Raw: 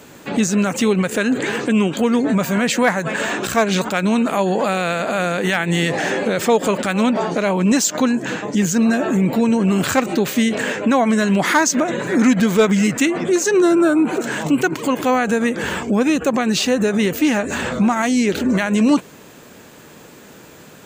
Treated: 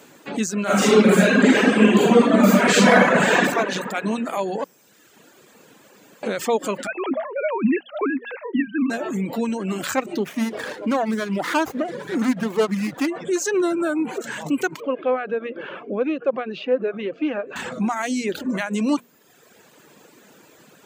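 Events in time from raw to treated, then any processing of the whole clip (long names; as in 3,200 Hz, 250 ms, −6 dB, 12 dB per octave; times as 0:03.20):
0:00.62–0:03.38: thrown reverb, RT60 2.6 s, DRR −11.5 dB
0:04.64–0:06.23: fill with room tone
0:06.87–0:08.90: three sine waves on the formant tracks
0:10.18–0:13.08: windowed peak hold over 9 samples
0:14.80–0:17.56: loudspeaker in its box 210–2,700 Hz, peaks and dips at 220 Hz −5 dB, 520 Hz +6 dB, 890 Hz −9 dB, 1,900 Hz −10 dB
whole clip: high-pass filter 160 Hz; mains-hum notches 60/120/180/240 Hz; reverb reduction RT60 1.1 s; level −5 dB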